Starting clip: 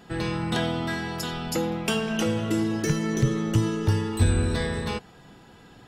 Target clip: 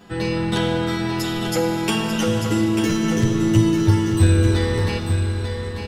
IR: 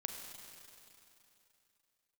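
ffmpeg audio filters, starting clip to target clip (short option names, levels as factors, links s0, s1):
-filter_complex "[0:a]aecho=1:1:892:0.447,asplit=2[s0][s1];[1:a]atrim=start_sample=2205,adelay=10[s2];[s1][s2]afir=irnorm=-1:irlink=0,volume=1.5[s3];[s0][s3]amix=inputs=2:normalize=0"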